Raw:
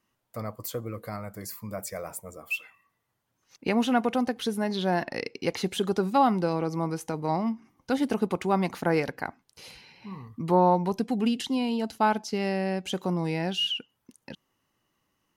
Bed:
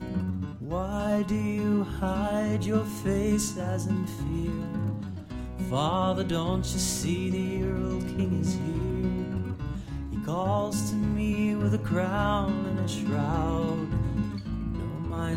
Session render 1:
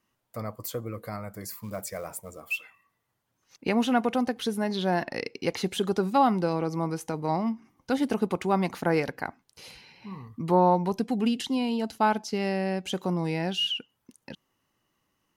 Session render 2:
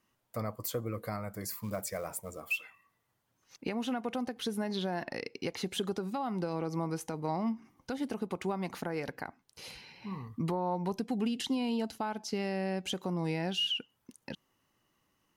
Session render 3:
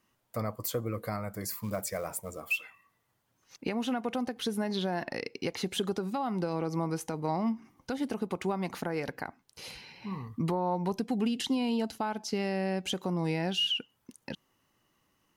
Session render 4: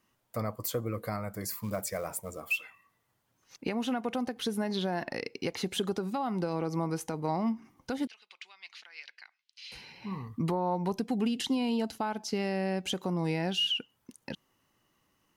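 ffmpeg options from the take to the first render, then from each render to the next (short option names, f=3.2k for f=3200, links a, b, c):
-filter_complex "[0:a]asettb=1/sr,asplit=3[a][b][c];[a]atrim=end=1.494[d];[b]atrim=start=1.49:end=2.53,asetpts=PTS-STARTPTS,afade=t=in:d=0.004:c=qsin,afade=t=out:st=1.036:d=0.004:c=qsin,acrusher=bits=6:mode=log:mix=0:aa=0.000001[e];[c]atrim=start=2.526[f];[d][e]acrossfade=d=0.004:c1=hsin:c2=qsin[g];[g][f]acrossfade=d=0.004:c1=qsin:c2=hsin"
-af "acompressor=threshold=-25dB:ratio=6,alimiter=limit=-23dB:level=0:latency=1:release=427"
-af "volume=2.5dB"
-filter_complex "[0:a]asettb=1/sr,asplit=3[a][b][c];[a]atrim=end=8.074[d];[b]atrim=start=8.07:end=9.72,asetpts=PTS-STARTPTS,afade=t=in:d=0.004:c=qsin,afade=t=out:st=1.646:d=0.004:c=qsin,asuperpass=centerf=3400:order=4:qfactor=1.2[e];[c]atrim=start=9.716[f];[d][e]acrossfade=d=0.004:c1=hsin:c2=qsin[g];[g][f]acrossfade=d=0.004:c1=qsin:c2=hsin"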